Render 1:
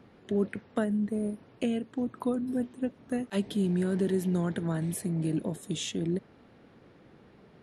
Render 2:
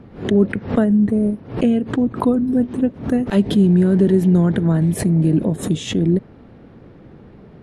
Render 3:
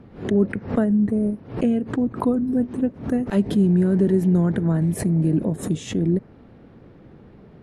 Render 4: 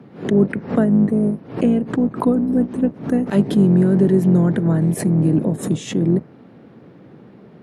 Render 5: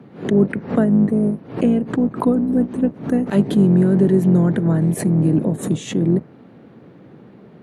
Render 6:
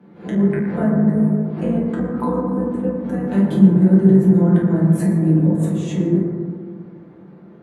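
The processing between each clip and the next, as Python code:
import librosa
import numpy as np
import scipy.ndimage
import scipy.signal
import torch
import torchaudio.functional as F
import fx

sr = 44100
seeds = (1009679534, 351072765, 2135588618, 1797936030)

y1 = fx.tilt_eq(x, sr, slope=-2.5)
y1 = fx.pre_swell(y1, sr, db_per_s=140.0)
y1 = y1 * 10.0 ** (8.5 / 20.0)
y2 = fx.dynamic_eq(y1, sr, hz=3400.0, q=1.9, threshold_db=-50.0, ratio=4.0, max_db=-6)
y2 = y2 * 10.0 ** (-4.0 / 20.0)
y3 = fx.octave_divider(y2, sr, octaves=2, level_db=1.0)
y3 = scipy.signal.sosfilt(scipy.signal.butter(4, 130.0, 'highpass', fs=sr, output='sos'), y3)
y3 = y3 * 10.0 ** (3.5 / 20.0)
y4 = fx.notch(y3, sr, hz=5200.0, q=12.0)
y5 = y4 + 0.31 * np.pad(y4, (int(5.8 * sr / 1000.0), 0))[:len(y4)]
y5 = fx.rev_fdn(y5, sr, rt60_s=2.0, lf_ratio=1.05, hf_ratio=0.3, size_ms=93.0, drr_db=-7.5)
y5 = y5 * 10.0 ** (-10.5 / 20.0)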